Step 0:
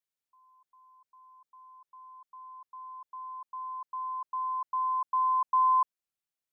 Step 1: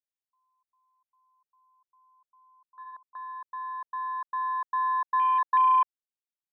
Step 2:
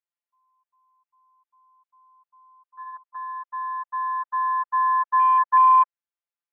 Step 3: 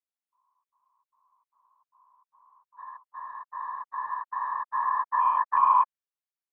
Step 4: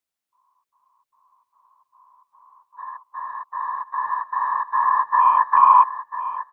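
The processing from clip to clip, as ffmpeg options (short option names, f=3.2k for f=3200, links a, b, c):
-af "afwtdn=0.0178,volume=3dB"
-filter_complex "[0:a]afftfilt=real='hypot(re,im)*cos(PI*b)':imag='0':win_size=1024:overlap=0.75,acrossover=split=540 2800:gain=0.0708 1 0.0708[a][b][c];[a][b][c]amix=inputs=3:normalize=0,acrossover=split=2700[d][e];[e]acompressor=threshold=-59dB:ratio=4:attack=1:release=60[f];[d][f]amix=inputs=2:normalize=0,volume=7dB"
-af "afftfilt=real='hypot(re,im)*cos(2*PI*random(0))':imag='hypot(re,im)*sin(2*PI*random(1))':win_size=512:overlap=0.75"
-af "aecho=1:1:996|1992:0.251|0.0402,volume=8dB"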